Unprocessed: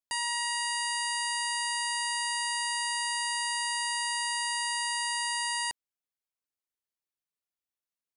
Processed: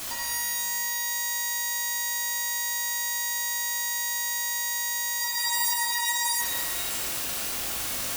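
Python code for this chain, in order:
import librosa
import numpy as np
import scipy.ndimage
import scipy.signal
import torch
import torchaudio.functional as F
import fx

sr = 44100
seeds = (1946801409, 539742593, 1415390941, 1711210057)

y = np.sign(x) * np.sqrt(np.mean(np.square(x)))
y = fx.spec_freeze(y, sr, seeds[0], at_s=5.23, hold_s=1.16)
y = fx.rev_shimmer(y, sr, seeds[1], rt60_s=1.4, semitones=12, shimmer_db=-2, drr_db=-2.5)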